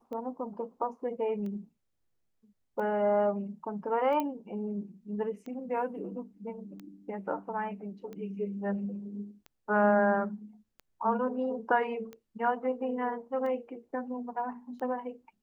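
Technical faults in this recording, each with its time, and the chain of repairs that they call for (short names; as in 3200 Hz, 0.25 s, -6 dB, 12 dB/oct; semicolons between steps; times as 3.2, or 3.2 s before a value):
tick 45 rpm -31 dBFS
4.2 pop -19 dBFS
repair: de-click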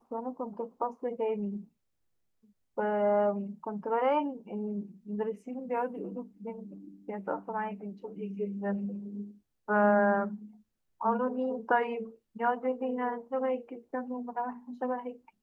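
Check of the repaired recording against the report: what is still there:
none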